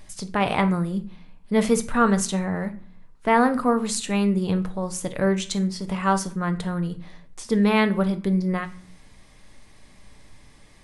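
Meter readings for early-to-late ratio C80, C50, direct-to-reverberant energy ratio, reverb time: 20.5 dB, 14.5 dB, 8.5 dB, 0.45 s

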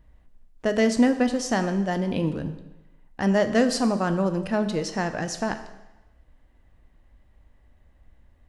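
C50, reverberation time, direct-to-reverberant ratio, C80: 11.0 dB, 0.95 s, 8.5 dB, 13.0 dB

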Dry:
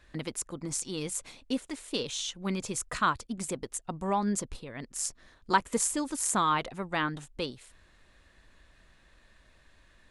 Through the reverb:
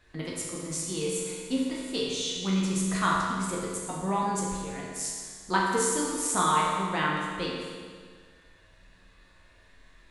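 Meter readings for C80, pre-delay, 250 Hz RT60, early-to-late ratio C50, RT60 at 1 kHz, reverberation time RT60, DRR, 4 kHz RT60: 1.0 dB, 11 ms, 1.7 s, -1.0 dB, 1.8 s, 1.8 s, -5.0 dB, 1.7 s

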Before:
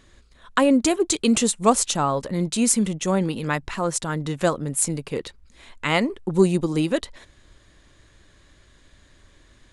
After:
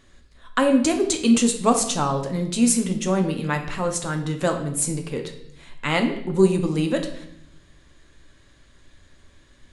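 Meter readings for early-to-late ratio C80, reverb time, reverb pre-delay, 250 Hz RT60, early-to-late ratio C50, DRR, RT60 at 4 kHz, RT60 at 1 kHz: 11.5 dB, 0.70 s, 4 ms, 1.1 s, 9.0 dB, 4.0 dB, 0.70 s, 0.65 s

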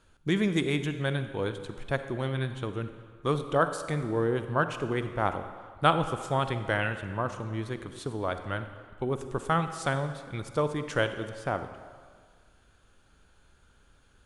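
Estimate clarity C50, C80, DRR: 9.5 dB, 10.5 dB, 9.0 dB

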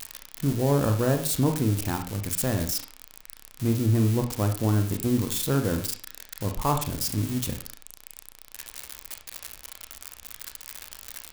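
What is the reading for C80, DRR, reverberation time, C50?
14.0 dB, 5.5 dB, 0.45 s, 9.0 dB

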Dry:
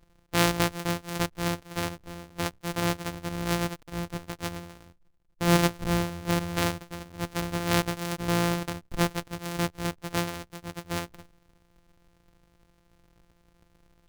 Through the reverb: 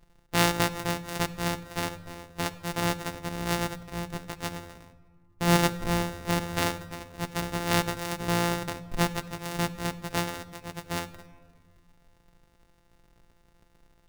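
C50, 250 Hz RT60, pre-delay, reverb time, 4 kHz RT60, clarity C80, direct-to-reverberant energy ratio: 15.0 dB, 2.2 s, 5 ms, 1.8 s, 1.0 s, 16.5 dB, 8.5 dB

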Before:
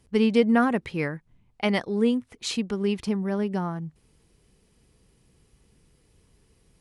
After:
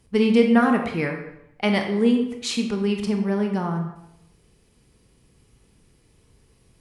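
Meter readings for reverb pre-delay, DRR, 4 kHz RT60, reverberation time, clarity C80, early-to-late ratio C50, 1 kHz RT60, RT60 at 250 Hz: 21 ms, 3.0 dB, 0.60 s, 0.80 s, 8.5 dB, 6.0 dB, 0.80 s, 0.75 s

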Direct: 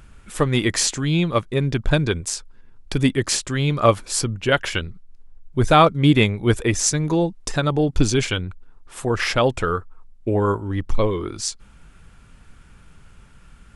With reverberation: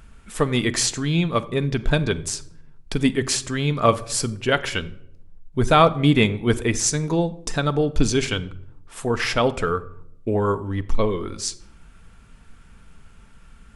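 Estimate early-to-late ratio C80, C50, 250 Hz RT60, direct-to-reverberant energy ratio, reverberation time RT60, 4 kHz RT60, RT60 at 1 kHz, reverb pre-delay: 20.5 dB, 18.0 dB, 1.1 s, 11.0 dB, 0.75 s, 0.45 s, 0.60 s, 4 ms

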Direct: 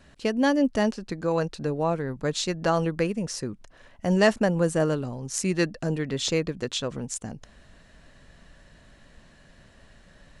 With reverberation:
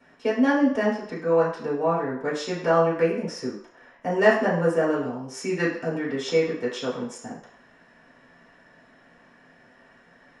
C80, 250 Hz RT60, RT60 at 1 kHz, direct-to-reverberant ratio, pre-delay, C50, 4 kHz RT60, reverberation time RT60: 8.0 dB, 0.45 s, 0.65 s, -7.5 dB, 3 ms, 4.5 dB, 0.60 s, 0.60 s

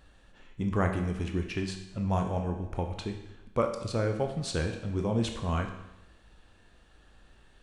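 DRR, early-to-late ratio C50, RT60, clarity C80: 4.0 dB, 7.0 dB, 0.90 s, 9.5 dB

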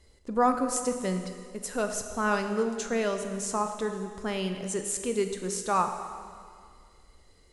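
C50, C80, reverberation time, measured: 7.0 dB, 8.5 dB, 2.1 s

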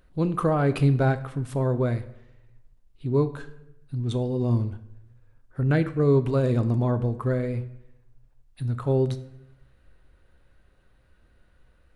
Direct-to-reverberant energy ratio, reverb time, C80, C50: 10.5 dB, 0.85 s, 16.5 dB, 14.5 dB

